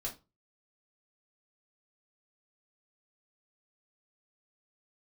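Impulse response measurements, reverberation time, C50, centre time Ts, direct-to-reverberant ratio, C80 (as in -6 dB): 0.25 s, 13.0 dB, 14 ms, -3.0 dB, 20.5 dB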